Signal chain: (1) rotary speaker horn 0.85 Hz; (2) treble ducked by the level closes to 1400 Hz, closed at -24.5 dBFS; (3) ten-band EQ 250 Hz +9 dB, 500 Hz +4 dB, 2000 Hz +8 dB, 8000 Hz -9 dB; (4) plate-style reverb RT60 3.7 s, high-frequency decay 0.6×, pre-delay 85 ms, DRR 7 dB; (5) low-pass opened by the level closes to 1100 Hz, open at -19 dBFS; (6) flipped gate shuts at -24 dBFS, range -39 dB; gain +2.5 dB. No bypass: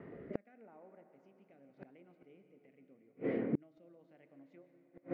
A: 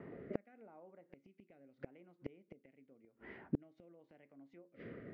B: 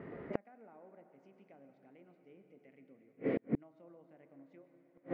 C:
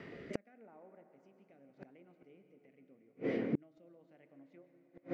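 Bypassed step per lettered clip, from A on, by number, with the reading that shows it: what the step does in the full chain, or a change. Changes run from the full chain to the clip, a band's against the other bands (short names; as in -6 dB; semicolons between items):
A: 4, momentary loudness spread change -2 LU; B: 1, 1 kHz band +2.5 dB; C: 5, 2 kHz band +3.5 dB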